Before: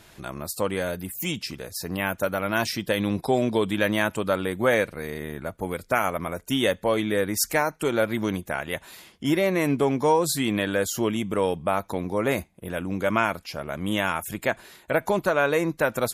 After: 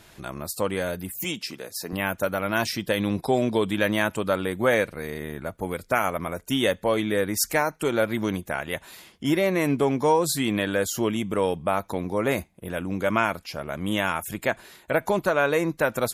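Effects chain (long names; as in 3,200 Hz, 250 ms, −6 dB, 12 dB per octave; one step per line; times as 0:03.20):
0:01.24–0:01.93: high-pass filter 210 Hz 12 dB per octave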